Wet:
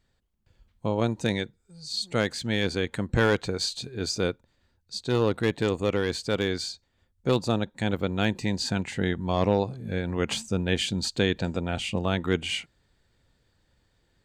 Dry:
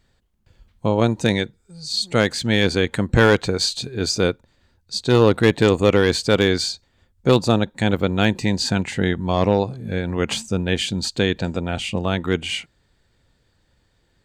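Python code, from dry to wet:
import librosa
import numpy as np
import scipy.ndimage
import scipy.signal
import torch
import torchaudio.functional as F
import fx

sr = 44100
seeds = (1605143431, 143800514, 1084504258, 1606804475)

y = fx.rider(x, sr, range_db=10, speed_s=2.0)
y = F.gain(torch.from_numpy(y), -7.5).numpy()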